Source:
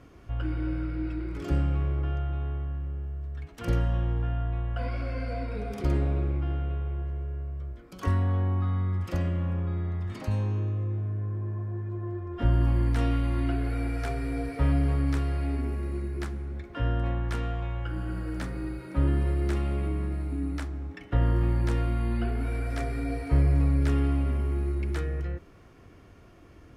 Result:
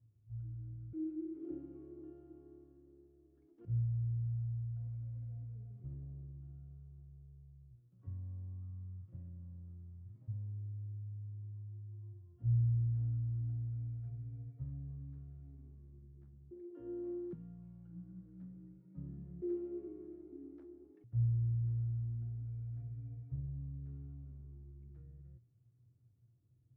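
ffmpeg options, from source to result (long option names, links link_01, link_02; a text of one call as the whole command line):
ffmpeg -i in.wav -af "asetnsamples=nb_out_samples=441:pad=0,asendcmd='0.93 bandpass f 330;3.65 bandpass f 120;16.51 bandpass f 350;17.33 bandpass f 170;19.42 bandpass f 360;21.04 bandpass f 120',bandpass=frequency=110:width_type=q:width=17:csg=0" out.wav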